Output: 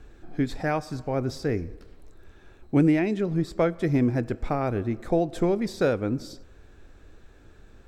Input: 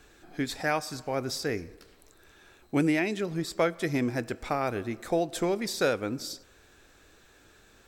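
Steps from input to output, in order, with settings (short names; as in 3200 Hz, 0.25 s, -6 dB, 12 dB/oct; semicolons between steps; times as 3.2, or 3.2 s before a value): tilt -3 dB/oct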